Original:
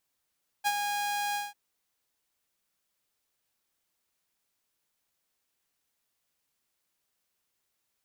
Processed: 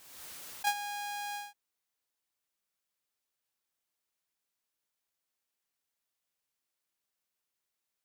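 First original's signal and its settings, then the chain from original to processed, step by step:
note with an ADSR envelope saw 820 Hz, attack 29 ms, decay 46 ms, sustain −6 dB, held 0.71 s, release 184 ms −20.5 dBFS
noise gate −29 dBFS, range −7 dB
low-shelf EQ 240 Hz −4.5 dB
background raised ahead of every attack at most 44 dB per second

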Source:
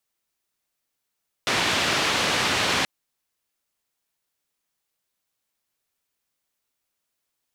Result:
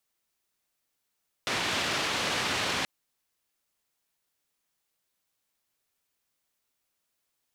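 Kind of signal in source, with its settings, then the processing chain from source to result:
band-limited noise 88–3,600 Hz, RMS −23 dBFS 1.38 s
brickwall limiter −20.5 dBFS

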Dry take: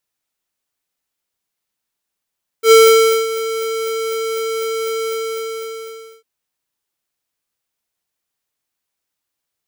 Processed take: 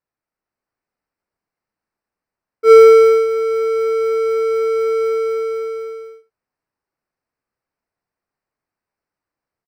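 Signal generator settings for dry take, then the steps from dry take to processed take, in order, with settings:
note with an ADSR envelope square 448 Hz, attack 84 ms, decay 556 ms, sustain −15 dB, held 2.41 s, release 1,190 ms −6 dBFS
automatic gain control gain up to 4 dB
moving average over 13 samples
single-tap delay 74 ms −15.5 dB

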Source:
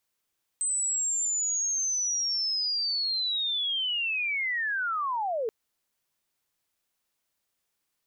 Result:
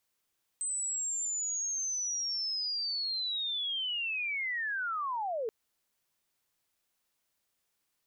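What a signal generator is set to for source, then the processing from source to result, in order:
glide linear 8,200 Hz → 420 Hz −25 dBFS → −26.5 dBFS 4.88 s
brickwall limiter −31 dBFS

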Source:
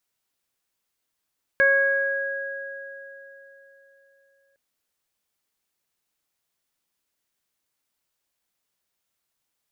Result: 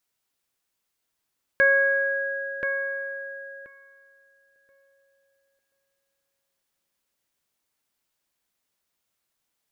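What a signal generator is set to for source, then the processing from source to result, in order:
harmonic partials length 2.96 s, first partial 550 Hz, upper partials −14/5/−10 dB, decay 3.89 s, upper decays 1.28/3.29/1.00 s, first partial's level −20 dB
feedback echo with a low-pass in the loop 1,030 ms, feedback 15%, low-pass 2,400 Hz, level −5 dB

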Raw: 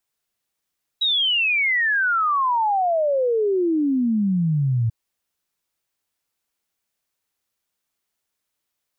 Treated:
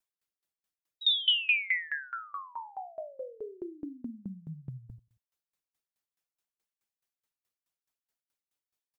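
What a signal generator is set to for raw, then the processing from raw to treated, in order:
exponential sine sweep 3,900 Hz → 110 Hz 3.89 s −17 dBFS
harmonic and percussive parts rebalanced harmonic −15 dB
on a send: repeating echo 92 ms, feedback 25%, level −8.5 dB
on the sum: tremolo with a ramp in dB decaying 4.7 Hz, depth 24 dB

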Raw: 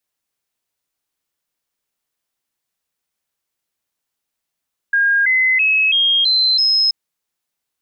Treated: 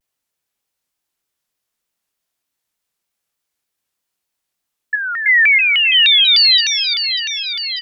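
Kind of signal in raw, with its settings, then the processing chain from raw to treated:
stepped sweep 1,620 Hz up, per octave 3, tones 6, 0.33 s, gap 0.00 s −11.5 dBFS
double-tracking delay 25 ms −5 dB
delay with a high-pass on its return 593 ms, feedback 65%, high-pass 1,900 Hz, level −8.5 dB
pitch modulation by a square or saw wave saw down 3.3 Hz, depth 250 cents

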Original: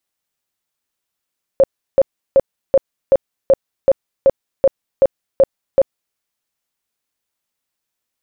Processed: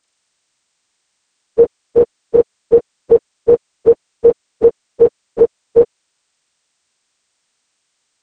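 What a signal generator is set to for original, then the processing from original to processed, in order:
tone bursts 542 Hz, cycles 20, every 0.38 s, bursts 12, −6 dBFS
partials spread apart or drawn together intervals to 80%
boost into a limiter +11.5 dB

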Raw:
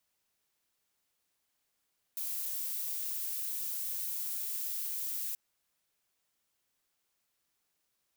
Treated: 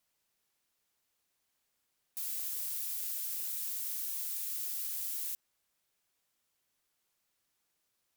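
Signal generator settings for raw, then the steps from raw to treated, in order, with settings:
noise violet, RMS −36.5 dBFS 3.18 s
pitch vibrato 15 Hz 41 cents

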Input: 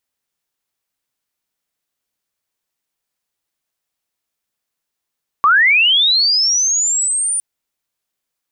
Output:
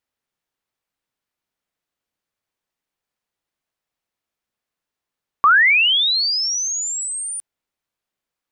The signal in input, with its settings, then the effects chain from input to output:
glide linear 1,100 Hz → 9,400 Hz −7.5 dBFS → −15.5 dBFS 1.96 s
high-shelf EQ 4,300 Hz −10.5 dB

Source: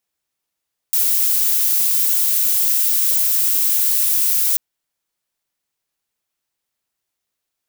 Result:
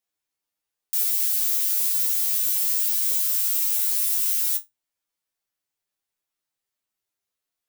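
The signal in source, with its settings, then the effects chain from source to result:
noise violet, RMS −16.5 dBFS 3.64 s
mains-hum notches 50/100/150/200 Hz
tuned comb filter 100 Hz, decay 0.16 s, harmonics all, mix 90%

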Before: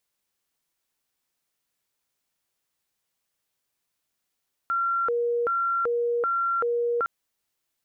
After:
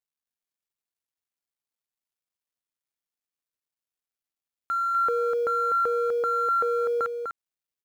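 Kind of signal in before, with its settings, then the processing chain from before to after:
siren hi-lo 475–1,370 Hz 1.3 per second sine −22 dBFS 2.36 s
mu-law and A-law mismatch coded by A
on a send: single-tap delay 249 ms −6 dB

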